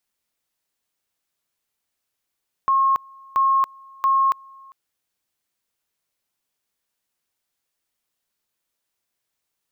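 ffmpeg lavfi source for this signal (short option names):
-f lavfi -i "aevalsrc='pow(10,(-14.5-27.5*gte(mod(t,0.68),0.28))/20)*sin(2*PI*1080*t)':d=2.04:s=44100"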